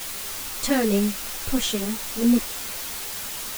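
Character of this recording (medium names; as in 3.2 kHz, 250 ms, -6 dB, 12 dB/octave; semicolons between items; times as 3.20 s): a quantiser's noise floor 6-bit, dither triangular; a shimmering, thickened sound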